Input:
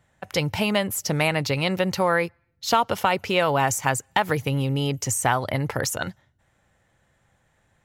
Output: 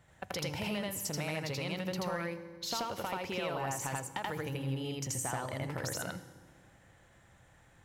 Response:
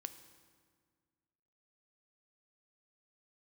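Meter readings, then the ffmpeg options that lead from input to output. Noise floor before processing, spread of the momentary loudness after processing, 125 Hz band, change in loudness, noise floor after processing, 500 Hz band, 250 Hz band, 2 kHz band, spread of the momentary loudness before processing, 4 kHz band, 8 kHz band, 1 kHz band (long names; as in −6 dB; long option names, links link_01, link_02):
−67 dBFS, 4 LU, −12.0 dB, −13.0 dB, −62 dBFS, −13.5 dB, −12.0 dB, −14.0 dB, 6 LU, −11.5 dB, −10.5 dB, −15.0 dB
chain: -filter_complex "[0:a]asoftclip=type=tanh:threshold=-9.5dB,acompressor=threshold=-40dB:ratio=4,asplit=2[link_01][link_02];[1:a]atrim=start_sample=2205,adelay=82[link_03];[link_02][link_03]afir=irnorm=-1:irlink=0,volume=4.5dB[link_04];[link_01][link_04]amix=inputs=2:normalize=0"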